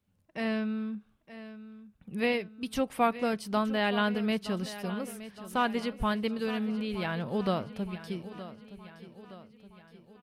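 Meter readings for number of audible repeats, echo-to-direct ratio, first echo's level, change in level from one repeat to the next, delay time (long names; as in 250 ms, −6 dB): 4, −13.0 dB, −14.5 dB, −5.5 dB, 919 ms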